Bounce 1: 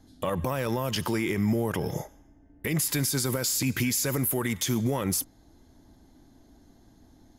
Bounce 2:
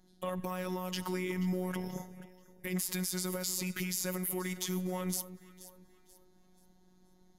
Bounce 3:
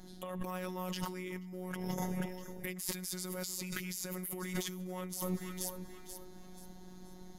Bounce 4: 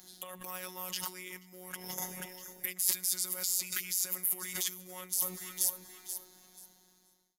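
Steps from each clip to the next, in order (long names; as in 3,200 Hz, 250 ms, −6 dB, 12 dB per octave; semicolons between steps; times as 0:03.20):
phases set to zero 183 Hz; delay that swaps between a low-pass and a high-pass 241 ms, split 1,200 Hz, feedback 58%, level −12 dB; level −6 dB
compressor whose output falls as the input rises −45 dBFS, ratio −1; level +5 dB
fade-out on the ending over 1.31 s; spectral tilt +4 dB per octave; level −2.5 dB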